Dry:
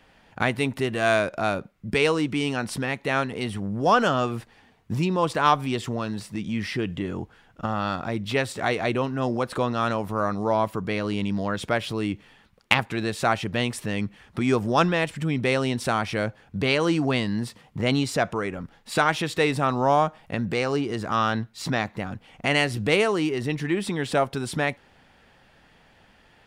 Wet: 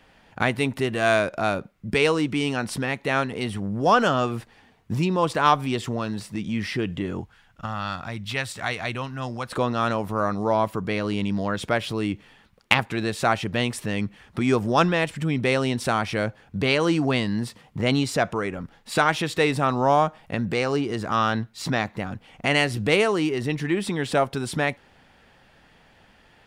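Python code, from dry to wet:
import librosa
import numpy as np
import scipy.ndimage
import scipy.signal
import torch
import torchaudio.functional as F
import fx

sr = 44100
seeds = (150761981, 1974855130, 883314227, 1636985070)

y = fx.peak_eq(x, sr, hz=380.0, db=-12.0, octaves=1.9, at=(7.21, 9.51))
y = y * 10.0 ** (1.0 / 20.0)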